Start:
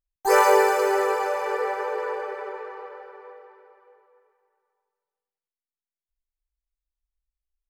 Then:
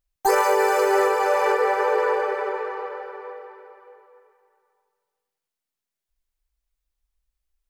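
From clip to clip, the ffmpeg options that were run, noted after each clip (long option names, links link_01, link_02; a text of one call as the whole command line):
ffmpeg -i in.wav -af "alimiter=limit=-17dB:level=0:latency=1:release=371,volume=7.5dB" out.wav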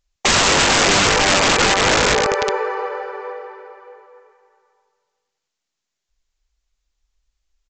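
ffmpeg -i in.wav -af "highshelf=frequency=3600:gain=6.5,aresample=16000,aeval=exprs='(mod(6.31*val(0)+1,2)-1)/6.31':channel_layout=same,aresample=44100,volume=6.5dB" out.wav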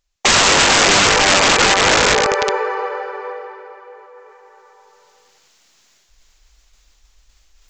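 ffmpeg -i in.wav -af "lowshelf=frequency=370:gain=-4.5,areverse,acompressor=mode=upward:threshold=-39dB:ratio=2.5,areverse,volume=3dB" out.wav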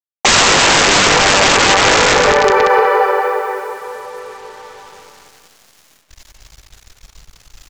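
ffmpeg -i in.wav -filter_complex "[0:a]acrusher=bits=7:mix=0:aa=0.5,asplit=2[link_01][link_02];[link_02]adelay=182,lowpass=frequency=2400:poles=1,volume=-4dB,asplit=2[link_03][link_04];[link_04]adelay=182,lowpass=frequency=2400:poles=1,volume=0.24,asplit=2[link_05][link_06];[link_06]adelay=182,lowpass=frequency=2400:poles=1,volume=0.24[link_07];[link_01][link_03][link_05][link_07]amix=inputs=4:normalize=0,alimiter=level_in=12dB:limit=-1dB:release=50:level=0:latency=1,volume=-1dB" out.wav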